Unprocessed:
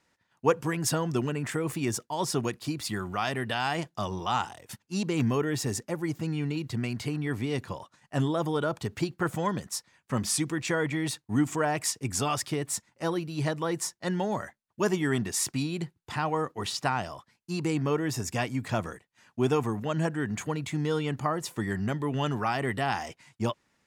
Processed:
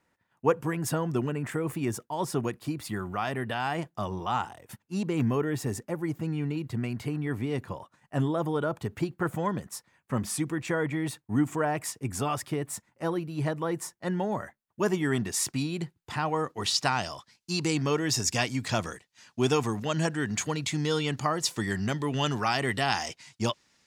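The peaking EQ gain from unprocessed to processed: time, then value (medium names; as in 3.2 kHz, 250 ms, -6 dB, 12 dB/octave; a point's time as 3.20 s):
peaking EQ 5.1 kHz 1.8 oct
14.37 s -8.5 dB
15.25 s 0 dB
16.29 s 0 dB
16.93 s +11 dB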